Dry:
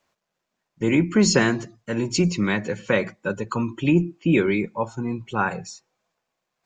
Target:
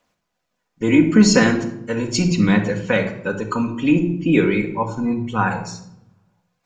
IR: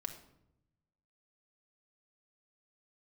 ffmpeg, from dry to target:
-filter_complex "[0:a]aphaser=in_gain=1:out_gain=1:delay=4.3:decay=0.31:speed=0.39:type=triangular[link_01];[1:a]atrim=start_sample=2205[link_02];[link_01][link_02]afir=irnorm=-1:irlink=0,volume=4.5dB"

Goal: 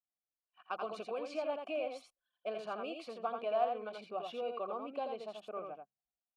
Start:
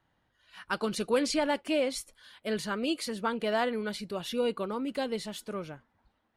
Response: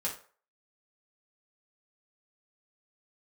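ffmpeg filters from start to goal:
-filter_complex "[0:a]bandreject=frequency=66.29:width_type=h:width=4,bandreject=frequency=132.58:width_type=h:width=4,bandreject=frequency=198.87:width_type=h:width=4,anlmdn=0.1,equalizer=frequency=350:width_type=o:width=2:gain=3.5,acompressor=threshold=-28dB:ratio=5,asplit=3[link_01][link_02][link_03];[link_01]bandpass=frequency=730:width_type=q:width=8,volume=0dB[link_04];[link_02]bandpass=frequency=1090:width_type=q:width=8,volume=-6dB[link_05];[link_03]bandpass=frequency=2440:width_type=q:width=8,volume=-9dB[link_06];[link_04][link_05][link_06]amix=inputs=3:normalize=0,asplit=2[link_07][link_08];[link_08]aecho=0:1:84:0.562[link_09];[link_07][link_09]amix=inputs=2:normalize=0,volume=5.5dB"

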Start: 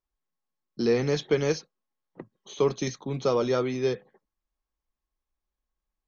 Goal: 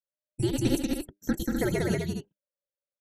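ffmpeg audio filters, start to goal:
ffmpeg -i in.wav -af "bandreject=frequency=850:width=5.3,afftdn=noise_reduction=17:noise_floor=-46,bandreject=frequency=50:width_type=h:width=6,bandreject=frequency=100:width_type=h:width=6,bandreject=frequency=150:width_type=h:width=6,bandreject=frequency=200:width_type=h:width=6,afreqshift=-300,asetrate=89082,aresample=44100,aecho=1:1:186.6|256.6:0.708|0.501,volume=-2.5dB" out.wav

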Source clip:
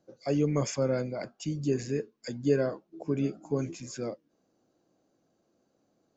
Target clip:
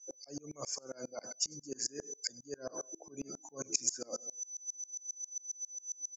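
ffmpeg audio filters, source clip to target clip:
ffmpeg -i in.wav -filter_complex "[0:a]asplit=2[link_01][link_02];[link_02]alimiter=level_in=1dB:limit=-24dB:level=0:latency=1:release=186,volume=-1dB,volume=-1.5dB[link_03];[link_01][link_03]amix=inputs=2:normalize=0,highpass=180,equalizer=frequency=1800:width=0.31:gain=13,bandreject=frequency=2000:width=15,aecho=1:1:98|196|294:0.112|0.046|0.0189,aeval=exprs='val(0)+0.00282*sin(2*PI*6000*n/s)':channel_layout=same,areverse,acompressor=threshold=-33dB:ratio=10,areverse,highshelf=frequency=4200:width_type=q:width=3:gain=11.5,aphaser=in_gain=1:out_gain=1:delay=4.2:decay=0.29:speed=0.34:type=sinusoidal,afftdn=noise_reduction=18:noise_floor=-44,aeval=exprs='val(0)*pow(10,-29*if(lt(mod(-7.4*n/s,1),2*abs(-7.4)/1000),1-mod(-7.4*n/s,1)/(2*abs(-7.4)/1000),(mod(-7.4*n/s,1)-2*abs(-7.4)/1000)/(1-2*abs(-7.4)/1000))/20)':channel_layout=same,volume=-1dB" out.wav

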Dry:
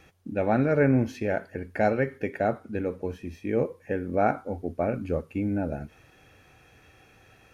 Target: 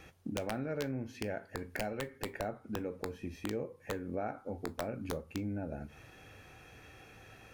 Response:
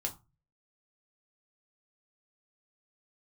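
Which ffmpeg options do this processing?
-filter_complex "[0:a]acompressor=threshold=-37dB:ratio=5,aeval=exprs='(mod(22.4*val(0)+1,2)-1)/22.4':channel_layout=same,asplit=2[link_01][link_02];[1:a]atrim=start_sample=2205,adelay=18[link_03];[link_02][link_03]afir=irnorm=-1:irlink=0,volume=-15.5dB[link_04];[link_01][link_04]amix=inputs=2:normalize=0,volume=1dB"

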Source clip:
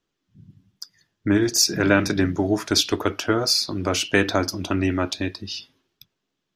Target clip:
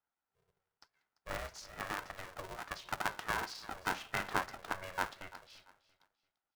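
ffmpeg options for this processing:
ffmpeg -i in.wav -filter_complex "[0:a]asettb=1/sr,asplit=3[link_01][link_02][link_03];[link_01]atrim=end=1.594[link_04];[link_02]atrim=start=1.59:end=2.83,asetpts=PTS-STARTPTS,afade=type=in:duration=0.004:curve=qsin,afade=type=out:start_time=1.236:duration=0.004:curve=qsin,acompressor=threshold=-20dB:ratio=6[link_05];[link_03]atrim=start=2.826[link_06];[link_04][link_05]acrossfade=duration=0.004:curve1=hsin:curve2=qsin[link_07];[link_07][link_06]acrossfade=duration=0.004:curve1=qsin:curve2=hsin,bandpass=frequency=1100:width_type=q:width=5.6:csg=0,flanger=delay=2.1:depth=8:regen=86:speed=1.1:shape=sinusoidal,asplit=2[link_08][link_09];[link_09]aecho=0:1:341|682|1023:0.126|0.0365|0.0106[link_10];[link_08][link_10]amix=inputs=2:normalize=0,aeval=exprs='val(0)*sgn(sin(2*PI*280*n/s))':channel_layout=same,volume=4.5dB" out.wav

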